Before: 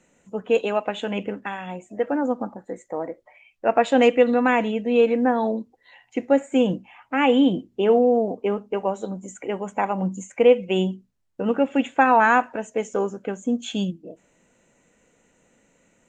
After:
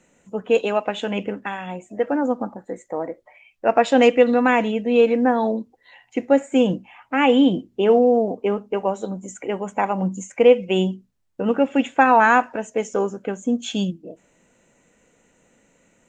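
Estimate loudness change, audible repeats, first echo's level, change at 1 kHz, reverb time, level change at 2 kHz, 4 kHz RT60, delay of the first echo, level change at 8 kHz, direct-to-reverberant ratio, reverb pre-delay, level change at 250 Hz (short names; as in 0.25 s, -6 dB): +2.0 dB, none, none, +2.0 dB, none, +2.0 dB, none, none, n/a, none, none, +2.0 dB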